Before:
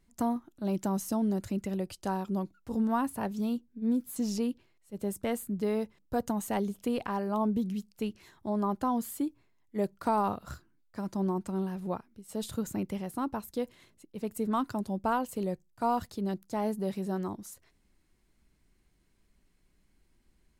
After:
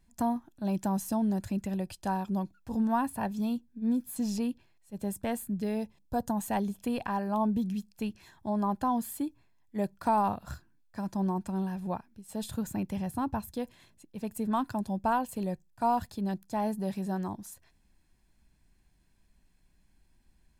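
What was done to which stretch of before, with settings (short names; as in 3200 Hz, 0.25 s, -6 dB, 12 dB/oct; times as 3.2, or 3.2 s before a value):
5.57–6.36 bell 880 Hz -> 2700 Hz -10.5 dB 0.61 oct
12.97–13.53 bell 92 Hz +13 dB 1.2 oct
whole clip: comb 1.2 ms, depth 43%; dynamic EQ 6000 Hz, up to -3 dB, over -56 dBFS, Q 2.1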